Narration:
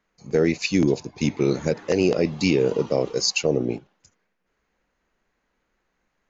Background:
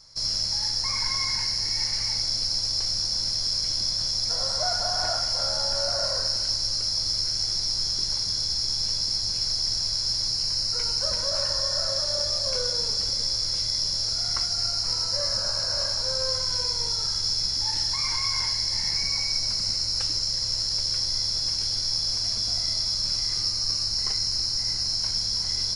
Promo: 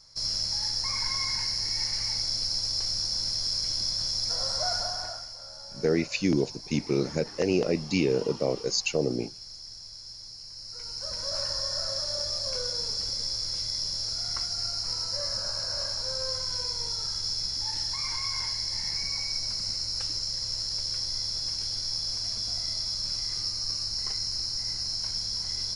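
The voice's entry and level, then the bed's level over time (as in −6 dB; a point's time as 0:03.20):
5.50 s, −5.0 dB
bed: 0:04.78 −3 dB
0:05.39 −17.5 dB
0:10.52 −17.5 dB
0:11.34 −5 dB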